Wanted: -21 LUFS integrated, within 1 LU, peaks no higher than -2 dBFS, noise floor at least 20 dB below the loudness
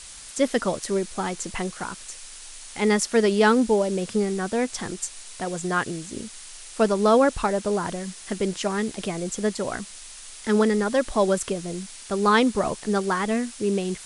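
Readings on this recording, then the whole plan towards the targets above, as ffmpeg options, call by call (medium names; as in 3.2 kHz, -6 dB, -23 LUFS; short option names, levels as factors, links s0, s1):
noise floor -42 dBFS; noise floor target -45 dBFS; loudness -24.5 LUFS; peak level -8.0 dBFS; loudness target -21.0 LUFS
-> -af "afftdn=nr=6:nf=-42"
-af "volume=1.5"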